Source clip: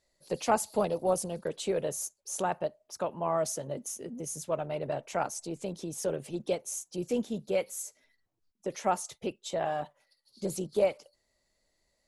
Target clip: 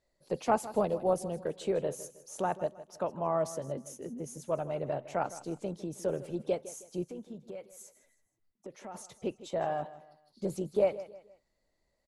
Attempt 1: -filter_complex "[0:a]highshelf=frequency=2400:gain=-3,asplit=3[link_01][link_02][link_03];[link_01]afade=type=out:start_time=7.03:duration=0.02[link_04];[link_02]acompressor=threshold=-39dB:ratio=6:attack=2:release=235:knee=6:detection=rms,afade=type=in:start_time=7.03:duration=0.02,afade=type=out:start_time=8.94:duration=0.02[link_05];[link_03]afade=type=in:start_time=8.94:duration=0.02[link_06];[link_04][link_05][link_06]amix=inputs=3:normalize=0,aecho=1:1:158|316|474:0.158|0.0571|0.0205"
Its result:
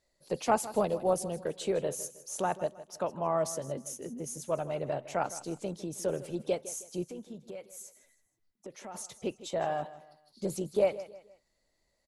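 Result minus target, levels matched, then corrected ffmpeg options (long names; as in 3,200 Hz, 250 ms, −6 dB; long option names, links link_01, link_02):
4,000 Hz band +4.5 dB
-filter_complex "[0:a]highshelf=frequency=2400:gain=-10.5,asplit=3[link_01][link_02][link_03];[link_01]afade=type=out:start_time=7.03:duration=0.02[link_04];[link_02]acompressor=threshold=-39dB:ratio=6:attack=2:release=235:knee=6:detection=rms,afade=type=in:start_time=7.03:duration=0.02,afade=type=out:start_time=8.94:duration=0.02[link_05];[link_03]afade=type=in:start_time=8.94:duration=0.02[link_06];[link_04][link_05][link_06]amix=inputs=3:normalize=0,aecho=1:1:158|316|474:0.158|0.0571|0.0205"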